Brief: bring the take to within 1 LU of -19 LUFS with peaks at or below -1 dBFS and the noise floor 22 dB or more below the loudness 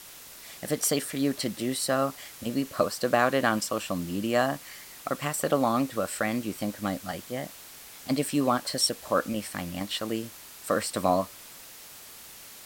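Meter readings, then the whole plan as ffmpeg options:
noise floor -47 dBFS; noise floor target -51 dBFS; loudness -28.5 LUFS; peak -7.5 dBFS; loudness target -19.0 LUFS
-> -af "afftdn=nr=6:nf=-47"
-af "volume=9.5dB,alimiter=limit=-1dB:level=0:latency=1"

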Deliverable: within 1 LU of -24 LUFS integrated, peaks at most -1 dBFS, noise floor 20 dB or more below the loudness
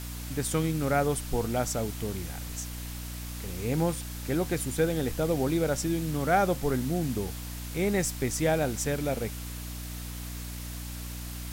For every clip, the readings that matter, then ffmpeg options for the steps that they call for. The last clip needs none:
hum 60 Hz; harmonics up to 300 Hz; hum level -36 dBFS; noise floor -38 dBFS; noise floor target -50 dBFS; loudness -30.0 LUFS; peak -12.0 dBFS; loudness target -24.0 LUFS
-> -af "bandreject=f=60:t=h:w=6,bandreject=f=120:t=h:w=6,bandreject=f=180:t=h:w=6,bandreject=f=240:t=h:w=6,bandreject=f=300:t=h:w=6"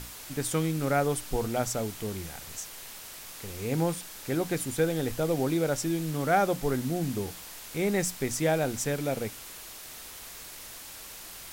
hum none; noise floor -44 dBFS; noise floor target -50 dBFS
-> -af "afftdn=nr=6:nf=-44"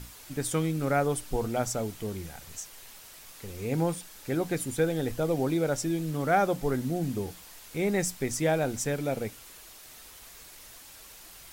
noise floor -50 dBFS; loudness -30.0 LUFS; peak -12.5 dBFS; loudness target -24.0 LUFS
-> -af "volume=6dB"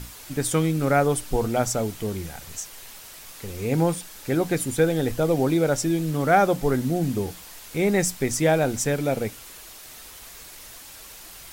loudness -24.0 LUFS; peak -6.5 dBFS; noise floor -44 dBFS

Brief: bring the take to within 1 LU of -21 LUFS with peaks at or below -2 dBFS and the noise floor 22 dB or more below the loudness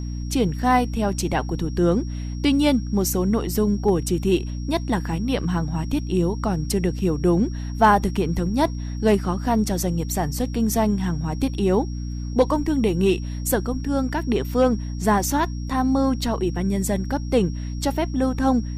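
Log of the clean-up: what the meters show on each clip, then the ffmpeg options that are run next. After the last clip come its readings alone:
hum 60 Hz; harmonics up to 300 Hz; hum level -26 dBFS; steady tone 5600 Hz; tone level -46 dBFS; loudness -22.5 LUFS; peak -5.5 dBFS; loudness target -21.0 LUFS
-> -af "bandreject=f=60:t=h:w=6,bandreject=f=120:t=h:w=6,bandreject=f=180:t=h:w=6,bandreject=f=240:t=h:w=6,bandreject=f=300:t=h:w=6"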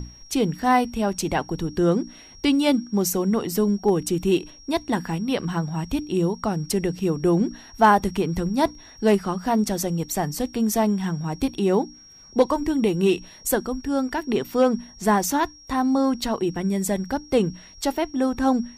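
hum none; steady tone 5600 Hz; tone level -46 dBFS
-> -af "bandreject=f=5.6k:w=30"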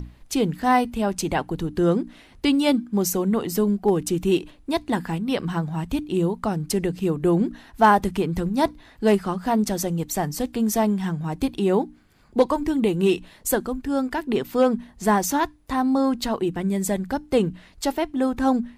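steady tone none; loudness -23.5 LUFS; peak -5.5 dBFS; loudness target -21.0 LUFS
-> -af "volume=2.5dB"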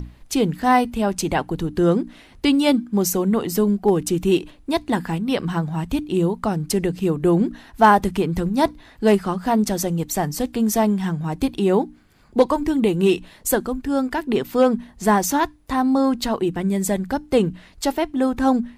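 loudness -21.0 LUFS; peak -3.0 dBFS; noise floor -50 dBFS

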